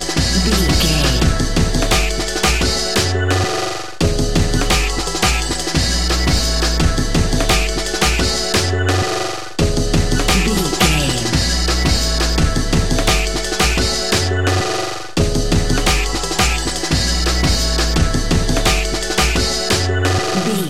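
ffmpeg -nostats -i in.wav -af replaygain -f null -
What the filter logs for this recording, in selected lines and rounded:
track_gain = -2.2 dB
track_peak = 0.608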